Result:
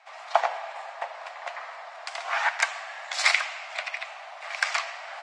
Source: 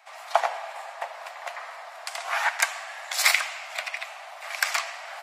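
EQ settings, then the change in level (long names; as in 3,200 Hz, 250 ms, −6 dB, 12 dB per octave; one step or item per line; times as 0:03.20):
Bessel low-pass filter 5,400 Hz, order 8
0.0 dB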